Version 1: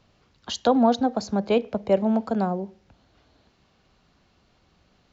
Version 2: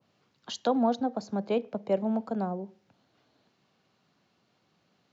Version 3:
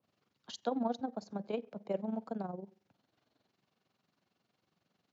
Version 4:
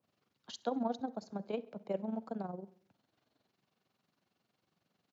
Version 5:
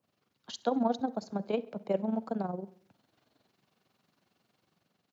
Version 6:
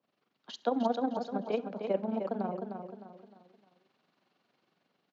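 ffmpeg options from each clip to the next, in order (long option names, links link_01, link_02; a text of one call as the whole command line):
ffmpeg -i in.wav -af "highpass=frequency=120:width=0.5412,highpass=frequency=120:width=1.3066,adynamicequalizer=threshold=0.0141:dfrequency=1500:dqfactor=0.7:tfrequency=1500:tqfactor=0.7:attack=5:release=100:ratio=0.375:range=3.5:mode=cutabove:tftype=highshelf,volume=-6.5dB" out.wav
ffmpeg -i in.wav -af "tremolo=f=22:d=0.71,volume=-5.5dB" out.wav
ffmpeg -i in.wav -af "aecho=1:1:67|134|201|268:0.0708|0.0411|0.0238|0.0138,volume=-1dB" out.wav
ffmpeg -i in.wav -af "dynaudnorm=framelen=150:gausssize=7:maxgain=4.5dB,volume=2dB" out.wav
ffmpeg -i in.wav -af "highpass=210,lowpass=4200,aecho=1:1:306|612|918|1224:0.473|0.175|0.0648|0.024" out.wav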